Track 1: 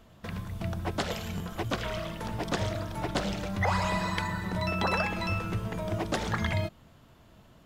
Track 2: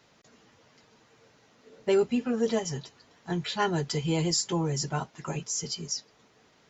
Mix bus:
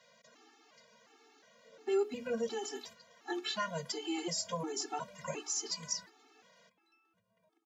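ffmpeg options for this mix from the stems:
-filter_complex "[0:a]acompressor=threshold=-36dB:ratio=3,adelay=1650,volume=-12dB[a];[1:a]bandreject=f=60:t=h:w=6,bandreject=f=120:t=h:w=6,bandreject=f=180:t=h:w=6,bandreject=f=240:t=h:w=6,bandreject=f=300:t=h:w=6,bandreject=f=360:t=h:w=6,bandreject=f=420:t=h:w=6,alimiter=limit=-23dB:level=0:latency=1:release=267,volume=1.5dB,asplit=2[b][c];[c]apad=whole_len=410229[d];[a][d]sidechaingate=range=-18dB:threshold=-48dB:ratio=16:detection=peak[e];[e][b]amix=inputs=2:normalize=0,highpass=290,afftfilt=real='re*gt(sin(2*PI*1.4*pts/sr)*(1-2*mod(floor(b*sr/1024/230),2)),0)':imag='im*gt(sin(2*PI*1.4*pts/sr)*(1-2*mod(floor(b*sr/1024/230),2)),0)':win_size=1024:overlap=0.75"

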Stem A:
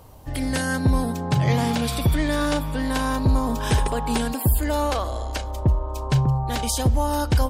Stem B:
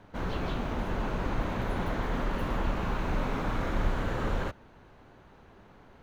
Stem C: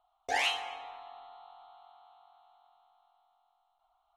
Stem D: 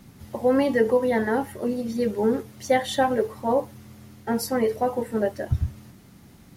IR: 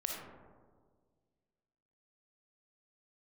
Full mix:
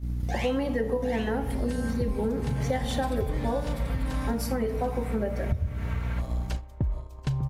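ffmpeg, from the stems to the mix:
-filter_complex "[0:a]adelay=1150,volume=-9dB,asplit=3[a][b][c];[a]atrim=end=4.35,asetpts=PTS-STARTPTS,afade=t=out:st=4.346:d=0.004:c=hsin[d];[b]atrim=start=4.35:end=6.18,asetpts=PTS-STARTPTS,volume=0[e];[c]atrim=start=6.18,asetpts=PTS-STARTPTS,afade=t=in:d=0.004:c=hsin[f];[d][e][f]concat=n=3:v=0:a=1,asplit=3[g][h][i];[h]volume=-13.5dB[j];[i]volume=-6.5dB[k];[1:a]highpass=630,equalizer=f=2.2k:w=3:g=10,aecho=1:1:4.4:0.84,adelay=1700,volume=-5dB,asplit=2[l][m];[m]volume=-16.5dB[n];[2:a]volume=0dB,asplit=2[o][p];[p]volume=-3.5dB[q];[3:a]aeval=exprs='val(0)+0.02*(sin(2*PI*60*n/s)+sin(2*PI*2*60*n/s)/2+sin(2*PI*3*60*n/s)/3+sin(2*PI*4*60*n/s)/4+sin(2*PI*5*60*n/s)/5)':c=same,volume=-1dB,asplit=3[r][s][t];[s]volume=-7.5dB[u];[t]apad=whole_len=340823[v];[l][v]sidechaincompress=threshold=-27dB:ratio=8:attack=16:release=359[w];[4:a]atrim=start_sample=2205[x];[j][u]amix=inputs=2:normalize=0[y];[y][x]afir=irnorm=-1:irlink=0[z];[k][n][q]amix=inputs=3:normalize=0,aecho=0:1:736:1[aa];[g][w][o][r][z][aa]amix=inputs=6:normalize=0,agate=range=-15dB:threshold=-33dB:ratio=16:detection=peak,lowshelf=f=150:g=11,acompressor=threshold=-26dB:ratio=4"

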